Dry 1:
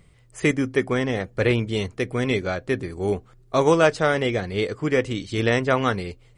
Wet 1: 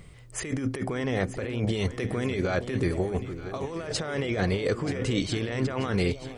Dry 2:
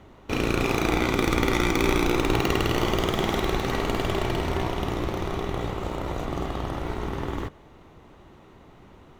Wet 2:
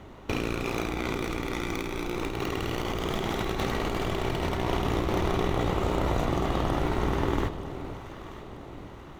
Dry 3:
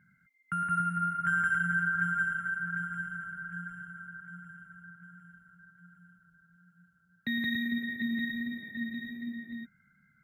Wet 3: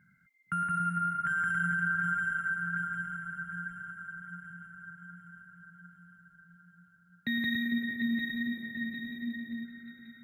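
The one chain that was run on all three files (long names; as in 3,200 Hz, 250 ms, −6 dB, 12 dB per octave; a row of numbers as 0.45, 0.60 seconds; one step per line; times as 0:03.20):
compressor whose output falls as the input rises −29 dBFS, ratio −1
on a send: delay that swaps between a low-pass and a high-pass 466 ms, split 830 Hz, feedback 67%, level −10 dB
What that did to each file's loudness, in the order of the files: −6.0, −3.5, −0.5 LU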